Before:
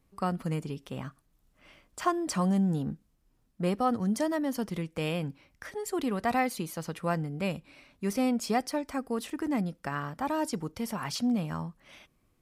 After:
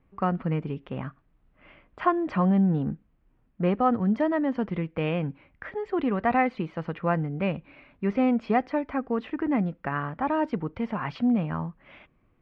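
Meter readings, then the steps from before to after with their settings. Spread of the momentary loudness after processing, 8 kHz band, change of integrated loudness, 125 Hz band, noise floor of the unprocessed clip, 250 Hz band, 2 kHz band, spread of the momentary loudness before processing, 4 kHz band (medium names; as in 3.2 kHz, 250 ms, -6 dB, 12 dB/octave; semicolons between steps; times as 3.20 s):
11 LU, under -30 dB, +4.5 dB, +4.5 dB, -70 dBFS, +4.5 dB, +4.0 dB, 11 LU, -6.0 dB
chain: low-pass 2.6 kHz 24 dB/octave; trim +4.5 dB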